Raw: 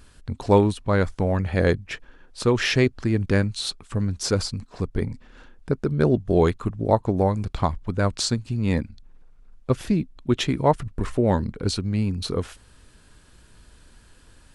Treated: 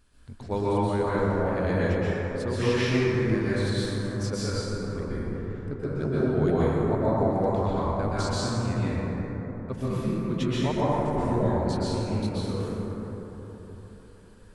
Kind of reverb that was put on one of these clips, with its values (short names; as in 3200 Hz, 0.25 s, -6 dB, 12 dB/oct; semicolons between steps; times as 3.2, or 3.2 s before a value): plate-style reverb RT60 4.2 s, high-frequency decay 0.3×, pre-delay 0.11 s, DRR -10 dB; gain -13.5 dB